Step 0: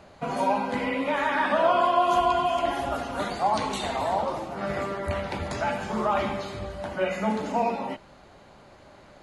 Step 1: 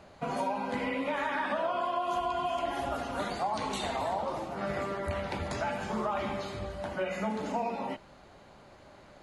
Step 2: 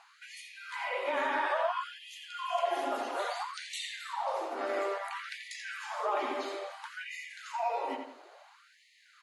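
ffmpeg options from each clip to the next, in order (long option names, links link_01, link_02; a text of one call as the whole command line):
ffmpeg -i in.wav -af "acompressor=threshold=-25dB:ratio=6,volume=-3dB" out.wav
ffmpeg -i in.wav -filter_complex "[0:a]asplit=2[link_01][link_02];[link_02]adelay=86,lowpass=frequency=3500:poles=1,volume=-5dB,asplit=2[link_03][link_04];[link_04]adelay=86,lowpass=frequency=3500:poles=1,volume=0.39,asplit=2[link_05][link_06];[link_06]adelay=86,lowpass=frequency=3500:poles=1,volume=0.39,asplit=2[link_07][link_08];[link_08]adelay=86,lowpass=frequency=3500:poles=1,volume=0.39,asplit=2[link_09][link_10];[link_10]adelay=86,lowpass=frequency=3500:poles=1,volume=0.39[link_11];[link_01][link_03][link_05][link_07][link_09][link_11]amix=inputs=6:normalize=0,afftfilt=real='re*gte(b*sr/1024,230*pow(1800/230,0.5+0.5*sin(2*PI*0.59*pts/sr)))':imag='im*gte(b*sr/1024,230*pow(1800/230,0.5+0.5*sin(2*PI*0.59*pts/sr)))':win_size=1024:overlap=0.75" out.wav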